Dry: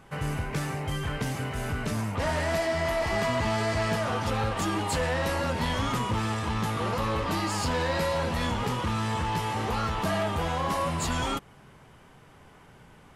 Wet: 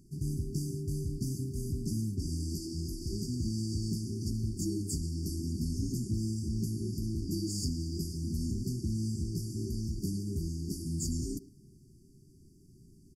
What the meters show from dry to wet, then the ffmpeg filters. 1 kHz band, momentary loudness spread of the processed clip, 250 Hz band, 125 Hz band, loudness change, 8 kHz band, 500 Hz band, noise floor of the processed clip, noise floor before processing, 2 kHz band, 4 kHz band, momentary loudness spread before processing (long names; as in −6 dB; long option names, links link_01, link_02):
below −40 dB, 3 LU, −2.5 dB, −2.5 dB, −6.5 dB, −2.5 dB, −15.5 dB, −59 dBFS, −54 dBFS, below −40 dB, −10.5 dB, 5 LU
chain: -filter_complex "[0:a]asplit=2[link_01][link_02];[link_02]adelay=110,highpass=300,lowpass=3400,asoftclip=type=hard:threshold=-24.5dB,volume=-13dB[link_03];[link_01][link_03]amix=inputs=2:normalize=0,afftfilt=real='re*(1-between(b*sr/4096,400,4500))':imag='im*(1-between(b*sr/4096,400,4500))':win_size=4096:overlap=0.75,volume=-2.5dB"